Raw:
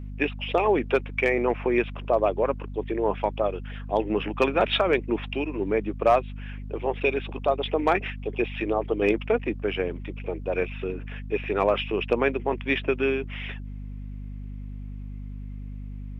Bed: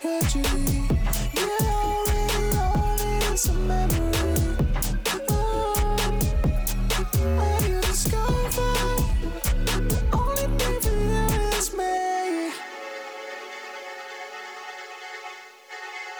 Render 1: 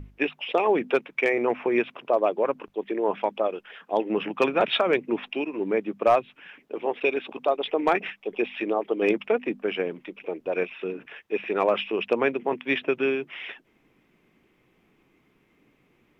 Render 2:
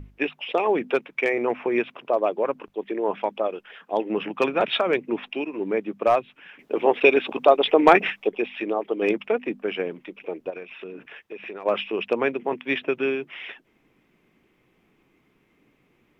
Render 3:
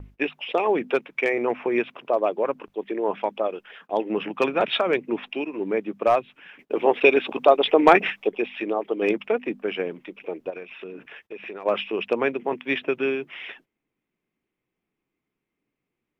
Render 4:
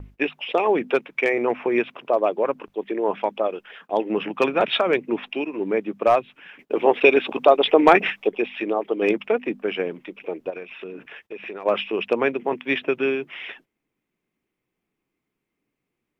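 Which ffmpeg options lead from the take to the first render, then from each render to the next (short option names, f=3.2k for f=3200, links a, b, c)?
-af "bandreject=f=50:t=h:w=6,bandreject=f=100:t=h:w=6,bandreject=f=150:t=h:w=6,bandreject=f=200:t=h:w=6,bandreject=f=250:t=h:w=6"
-filter_complex "[0:a]asplit=3[a][b][c];[a]afade=t=out:st=10.49:d=0.02[d];[b]acompressor=threshold=-32dB:ratio=10:attack=3.2:release=140:knee=1:detection=peak,afade=t=in:st=10.49:d=0.02,afade=t=out:st=11.65:d=0.02[e];[c]afade=t=in:st=11.65:d=0.02[f];[d][e][f]amix=inputs=3:normalize=0,asplit=3[g][h][i];[g]atrim=end=6.592[j];[h]atrim=start=6.588:end=8.292,asetpts=PTS-STARTPTS,volume=8dB[k];[i]atrim=start=8.288[l];[j][k]acrossfade=d=0.004:c1=hsin:c2=hsin[m];[m][l]acrossfade=d=0.004:c1=hsin:c2=hsin"
-af "agate=range=-19dB:threshold=-50dB:ratio=16:detection=peak"
-af "volume=2dB,alimiter=limit=-2dB:level=0:latency=1"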